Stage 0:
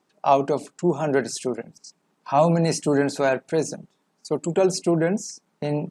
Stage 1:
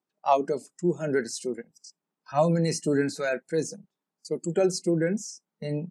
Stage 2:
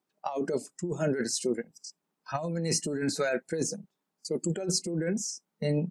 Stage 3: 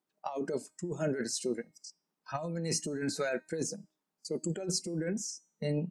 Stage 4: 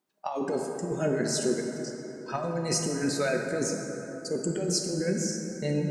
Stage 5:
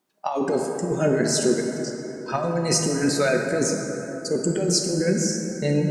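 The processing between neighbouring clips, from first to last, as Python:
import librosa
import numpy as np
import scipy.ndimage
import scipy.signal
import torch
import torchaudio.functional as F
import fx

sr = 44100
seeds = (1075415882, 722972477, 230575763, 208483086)

y1 = fx.noise_reduce_blind(x, sr, reduce_db=15)
y1 = y1 * librosa.db_to_amplitude(-3.5)
y2 = fx.over_compress(y1, sr, threshold_db=-29.0, ratio=-1.0)
y3 = fx.comb_fb(y2, sr, f0_hz=310.0, decay_s=0.45, harmonics='all', damping=0.0, mix_pct=40)
y4 = fx.rev_plate(y3, sr, seeds[0], rt60_s=3.9, hf_ratio=0.4, predelay_ms=0, drr_db=1.5)
y4 = y4 * librosa.db_to_amplitude(4.0)
y5 = fx.wow_flutter(y4, sr, seeds[1], rate_hz=2.1, depth_cents=17.0)
y5 = y5 * librosa.db_to_amplitude(6.5)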